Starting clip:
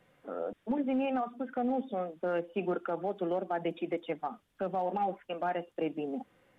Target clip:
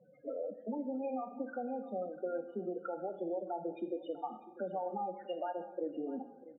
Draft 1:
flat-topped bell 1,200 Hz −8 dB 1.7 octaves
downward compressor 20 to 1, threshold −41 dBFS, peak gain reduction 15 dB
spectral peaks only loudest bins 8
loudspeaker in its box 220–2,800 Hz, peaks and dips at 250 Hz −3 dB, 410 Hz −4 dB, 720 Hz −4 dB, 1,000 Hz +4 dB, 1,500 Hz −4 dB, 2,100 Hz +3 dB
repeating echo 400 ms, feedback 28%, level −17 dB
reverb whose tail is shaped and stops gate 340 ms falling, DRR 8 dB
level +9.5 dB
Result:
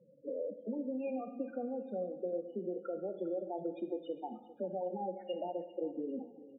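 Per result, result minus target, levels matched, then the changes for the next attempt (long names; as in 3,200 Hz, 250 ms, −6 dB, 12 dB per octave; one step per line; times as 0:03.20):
echo 247 ms early; 1,000 Hz band −4.5 dB
change: repeating echo 647 ms, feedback 28%, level −17 dB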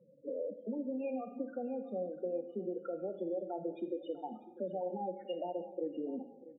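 1,000 Hz band −4.5 dB
remove: flat-topped bell 1,200 Hz −8 dB 1.7 octaves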